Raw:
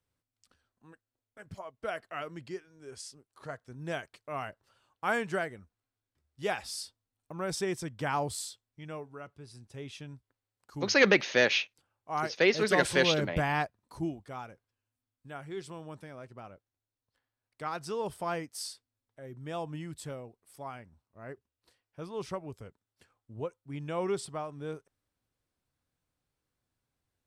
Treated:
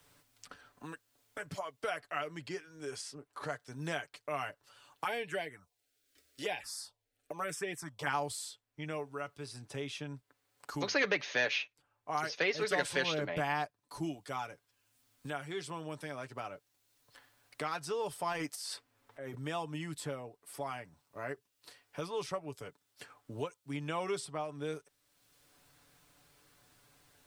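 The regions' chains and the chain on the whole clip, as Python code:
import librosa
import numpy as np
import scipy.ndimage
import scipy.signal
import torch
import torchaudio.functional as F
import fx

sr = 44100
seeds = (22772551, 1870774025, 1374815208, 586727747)

y = fx.chain(x, sr, fx.low_shelf(hz=210.0, db=-10.5),
    fx.env_phaser(low_hz=150.0, high_hz=1300.0, full_db=-29.5), at=(5.04, 8.07))
y = fx.chain(y, sr, fx.low_shelf(hz=180.0, db=-7.5),
    fx.transient(attack_db=-10, sustain_db=12), at=(18.32, 19.35))
y = fx.low_shelf(y, sr, hz=320.0, db=-9.0)
y = y + 0.51 * np.pad(y, (int(6.9 * sr / 1000.0), 0))[:len(y)]
y = fx.band_squash(y, sr, depth_pct=70)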